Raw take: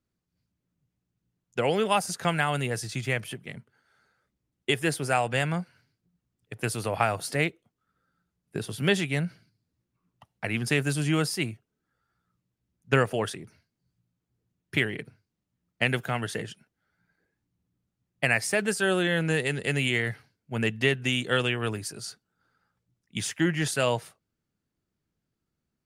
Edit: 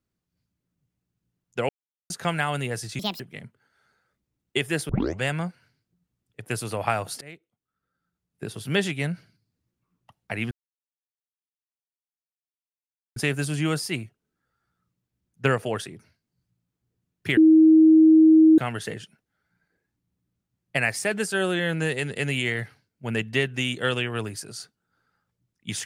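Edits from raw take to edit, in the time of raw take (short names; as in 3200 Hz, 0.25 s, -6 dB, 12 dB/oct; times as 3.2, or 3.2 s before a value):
1.69–2.1 mute
2.99–3.33 speed 161%
5.02 tape start 0.32 s
7.34–8.91 fade in, from -22 dB
10.64 insert silence 2.65 s
14.85–16.06 bleep 317 Hz -10.5 dBFS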